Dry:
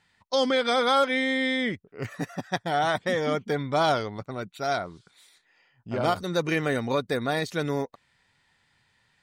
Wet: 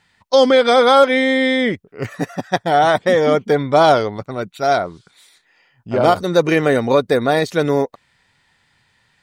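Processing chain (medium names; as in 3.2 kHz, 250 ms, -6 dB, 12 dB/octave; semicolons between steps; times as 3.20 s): dynamic bell 510 Hz, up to +6 dB, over -36 dBFS, Q 0.72; trim +7 dB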